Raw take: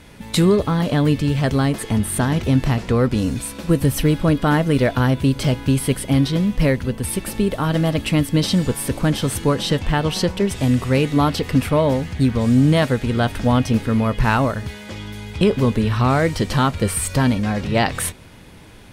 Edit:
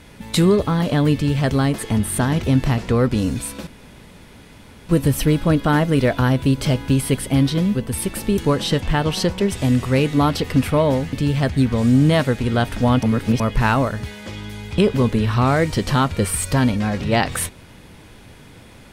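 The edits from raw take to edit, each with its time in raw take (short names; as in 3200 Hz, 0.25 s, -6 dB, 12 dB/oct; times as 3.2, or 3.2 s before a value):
1.14–1.5 copy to 12.12
3.67 insert room tone 1.22 s
6.53–6.86 cut
7.49–9.37 cut
13.66–14.03 reverse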